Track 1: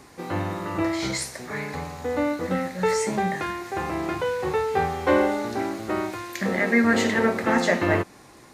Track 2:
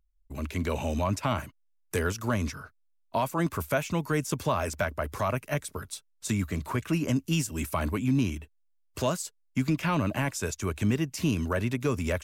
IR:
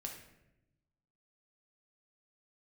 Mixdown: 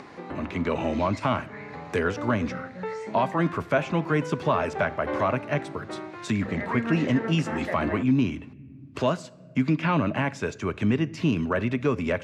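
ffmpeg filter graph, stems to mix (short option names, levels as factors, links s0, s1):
-filter_complex "[0:a]volume=0.299[s0];[1:a]volume=1.33,asplit=2[s1][s2];[s2]volume=0.335[s3];[2:a]atrim=start_sample=2205[s4];[s3][s4]afir=irnorm=-1:irlink=0[s5];[s0][s1][s5]amix=inputs=3:normalize=0,highpass=130,lowpass=3100,acompressor=mode=upward:threshold=0.0282:ratio=2.5"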